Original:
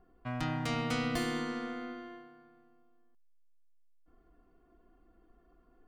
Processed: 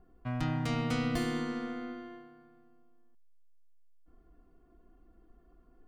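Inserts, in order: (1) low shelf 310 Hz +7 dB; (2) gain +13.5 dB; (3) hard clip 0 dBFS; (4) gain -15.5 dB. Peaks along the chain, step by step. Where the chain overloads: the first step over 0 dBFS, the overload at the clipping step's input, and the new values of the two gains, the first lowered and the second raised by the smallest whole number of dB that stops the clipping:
-17.5, -4.0, -4.0, -19.5 dBFS; no overload

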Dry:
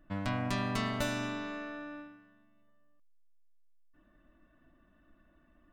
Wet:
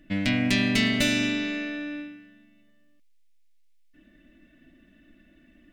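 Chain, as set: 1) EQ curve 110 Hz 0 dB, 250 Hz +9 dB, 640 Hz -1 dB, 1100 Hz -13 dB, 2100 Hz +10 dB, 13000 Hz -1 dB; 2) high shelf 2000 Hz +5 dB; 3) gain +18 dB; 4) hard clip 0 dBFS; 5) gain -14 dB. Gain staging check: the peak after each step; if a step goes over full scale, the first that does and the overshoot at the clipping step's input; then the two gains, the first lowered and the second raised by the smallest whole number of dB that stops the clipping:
-14.0, -11.5, +6.5, 0.0, -14.0 dBFS; step 3, 6.5 dB; step 3 +11 dB, step 5 -7 dB

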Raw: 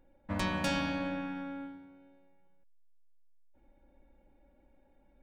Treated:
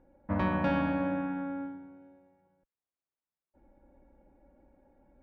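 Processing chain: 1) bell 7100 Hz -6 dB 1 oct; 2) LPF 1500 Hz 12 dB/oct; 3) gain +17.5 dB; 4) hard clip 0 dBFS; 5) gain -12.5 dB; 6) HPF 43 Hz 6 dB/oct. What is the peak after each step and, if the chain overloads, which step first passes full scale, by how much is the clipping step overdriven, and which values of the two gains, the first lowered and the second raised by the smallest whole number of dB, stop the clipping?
-20.0, -21.5, -4.0, -4.0, -16.5, -17.0 dBFS; no overload

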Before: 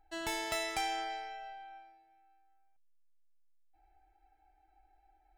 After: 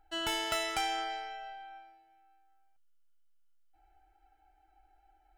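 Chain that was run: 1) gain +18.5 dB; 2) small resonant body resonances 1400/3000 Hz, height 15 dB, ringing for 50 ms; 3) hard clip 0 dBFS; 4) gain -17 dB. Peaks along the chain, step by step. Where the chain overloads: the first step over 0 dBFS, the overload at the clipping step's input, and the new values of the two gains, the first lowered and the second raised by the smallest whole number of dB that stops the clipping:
-4.0, -3.0, -3.0, -20.0 dBFS; no overload

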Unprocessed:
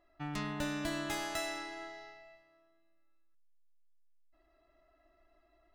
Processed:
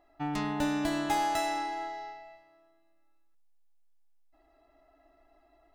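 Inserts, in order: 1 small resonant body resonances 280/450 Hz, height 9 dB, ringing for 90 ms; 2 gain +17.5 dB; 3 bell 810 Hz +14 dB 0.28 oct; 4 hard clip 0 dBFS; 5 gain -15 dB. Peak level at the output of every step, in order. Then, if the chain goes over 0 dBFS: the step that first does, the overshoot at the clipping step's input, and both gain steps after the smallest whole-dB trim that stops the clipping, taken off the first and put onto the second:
-22.0, -4.5, -3.5, -3.5, -18.5 dBFS; no overload

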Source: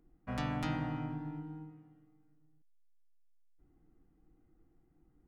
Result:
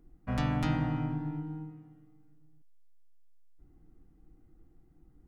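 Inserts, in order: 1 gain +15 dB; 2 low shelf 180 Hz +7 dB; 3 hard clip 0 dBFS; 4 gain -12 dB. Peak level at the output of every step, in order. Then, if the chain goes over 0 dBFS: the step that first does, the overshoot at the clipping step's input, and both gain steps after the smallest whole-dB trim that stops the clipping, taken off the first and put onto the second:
-6.5, -4.5, -4.5, -16.5 dBFS; no overload

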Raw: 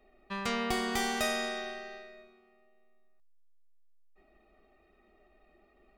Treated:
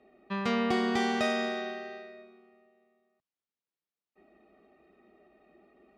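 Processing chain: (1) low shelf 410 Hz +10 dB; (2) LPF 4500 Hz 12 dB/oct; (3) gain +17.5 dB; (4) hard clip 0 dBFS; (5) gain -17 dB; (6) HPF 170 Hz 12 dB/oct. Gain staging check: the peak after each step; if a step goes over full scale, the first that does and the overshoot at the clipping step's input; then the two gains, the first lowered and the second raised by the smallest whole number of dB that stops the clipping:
-12.0, -13.0, +4.5, 0.0, -17.0, -17.5 dBFS; step 3, 4.5 dB; step 3 +12.5 dB, step 5 -12 dB

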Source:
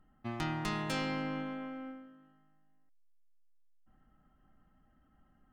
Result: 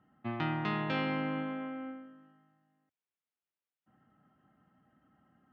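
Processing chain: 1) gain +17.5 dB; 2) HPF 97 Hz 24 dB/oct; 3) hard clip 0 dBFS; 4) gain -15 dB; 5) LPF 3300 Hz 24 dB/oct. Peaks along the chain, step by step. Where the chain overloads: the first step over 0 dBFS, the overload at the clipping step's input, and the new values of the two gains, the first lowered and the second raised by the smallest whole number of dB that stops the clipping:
-3.0, -5.0, -5.0, -20.0, -20.5 dBFS; no overload

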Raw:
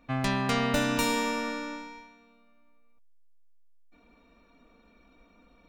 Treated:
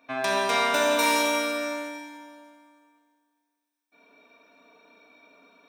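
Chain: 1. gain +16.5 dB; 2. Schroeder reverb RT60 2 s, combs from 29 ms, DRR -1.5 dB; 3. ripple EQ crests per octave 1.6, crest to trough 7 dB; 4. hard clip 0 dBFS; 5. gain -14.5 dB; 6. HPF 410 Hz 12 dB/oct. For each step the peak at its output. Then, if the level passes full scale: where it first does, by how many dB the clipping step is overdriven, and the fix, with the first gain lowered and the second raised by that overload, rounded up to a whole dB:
+5.0, +5.0, +6.0, 0.0, -14.5, -10.5 dBFS; step 1, 6.0 dB; step 1 +10.5 dB, step 5 -8.5 dB

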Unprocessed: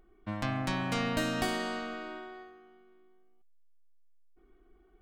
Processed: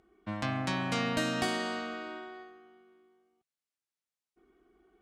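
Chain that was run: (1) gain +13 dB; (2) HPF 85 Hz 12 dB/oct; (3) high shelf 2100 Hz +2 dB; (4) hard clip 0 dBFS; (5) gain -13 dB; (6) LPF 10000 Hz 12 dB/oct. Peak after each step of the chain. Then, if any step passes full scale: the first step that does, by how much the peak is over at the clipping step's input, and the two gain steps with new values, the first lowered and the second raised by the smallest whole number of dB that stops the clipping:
-5.0, -5.0, -4.5, -4.5, -17.5, -17.5 dBFS; no overload

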